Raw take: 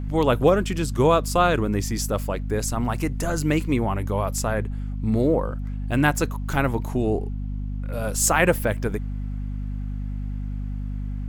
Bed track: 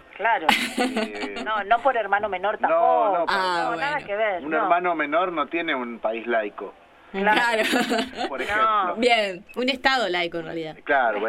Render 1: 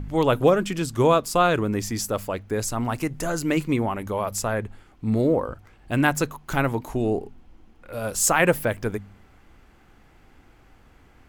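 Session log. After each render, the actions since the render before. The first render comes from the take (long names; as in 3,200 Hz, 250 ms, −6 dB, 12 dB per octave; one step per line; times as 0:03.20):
hum removal 50 Hz, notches 5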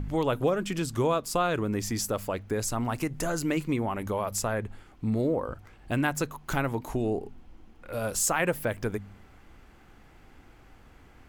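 downward compressor 2 to 1, threshold −28 dBFS, peak gain reduction 9 dB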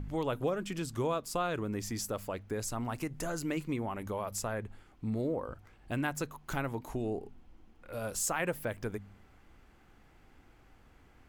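level −6.5 dB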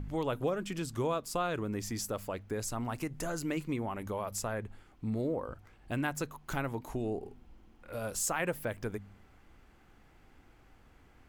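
0:07.18–0:07.96: double-tracking delay 48 ms −4 dB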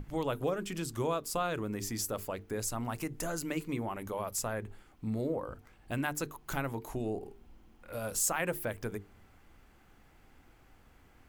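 high-shelf EQ 9,700 Hz +8 dB
mains-hum notches 50/100/150/200/250/300/350/400/450 Hz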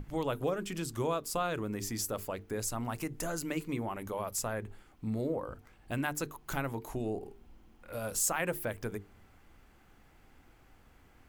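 no processing that can be heard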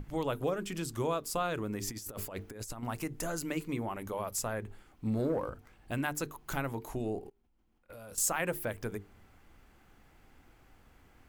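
0:01.87–0:02.83: compressor whose output falls as the input rises −40 dBFS, ratio −0.5
0:05.05–0:05.50: leveller curve on the samples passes 1
0:07.20–0:08.18: output level in coarse steps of 24 dB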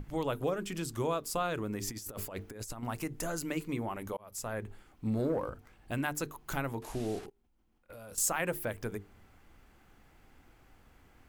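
0:04.17–0:04.59: fade in
0:06.82–0:07.26: linear delta modulator 64 kbit/s, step −41.5 dBFS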